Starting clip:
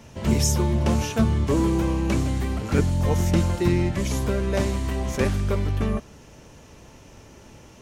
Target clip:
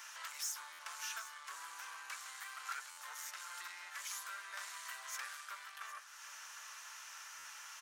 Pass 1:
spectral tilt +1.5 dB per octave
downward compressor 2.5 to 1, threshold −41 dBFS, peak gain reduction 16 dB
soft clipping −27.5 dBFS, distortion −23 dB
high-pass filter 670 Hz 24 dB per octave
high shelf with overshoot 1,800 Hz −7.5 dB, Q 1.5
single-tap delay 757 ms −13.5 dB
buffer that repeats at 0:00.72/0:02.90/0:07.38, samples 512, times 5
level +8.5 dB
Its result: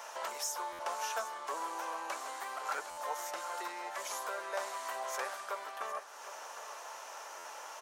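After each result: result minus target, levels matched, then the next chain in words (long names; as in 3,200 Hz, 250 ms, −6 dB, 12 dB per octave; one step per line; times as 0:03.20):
500 Hz band +20.0 dB; soft clipping: distortion −10 dB
spectral tilt +1.5 dB per octave
downward compressor 2.5 to 1, threshold −41 dBFS, peak gain reduction 16 dB
soft clipping −27.5 dBFS, distortion −23 dB
high-pass filter 1,400 Hz 24 dB per octave
high shelf with overshoot 1,800 Hz −7.5 dB, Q 1.5
single-tap delay 757 ms −13.5 dB
buffer that repeats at 0:00.72/0:02.90/0:07.38, samples 512, times 5
level +8.5 dB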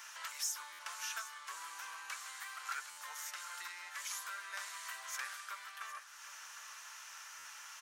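soft clipping: distortion −10 dB
spectral tilt +1.5 dB per octave
downward compressor 2.5 to 1, threshold −41 dBFS, peak gain reduction 16 dB
soft clipping −35 dBFS, distortion −13 dB
high-pass filter 1,400 Hz 24 dB per octave
high shelf with overshoot 1,800 Hz −7.5 dB, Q 1.5
single-tap delay 757 ms −13.5 dB
buffer that repeats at 0:00.72/0:02.90/0:07.38, samples 512, times 5
level +8.5 dB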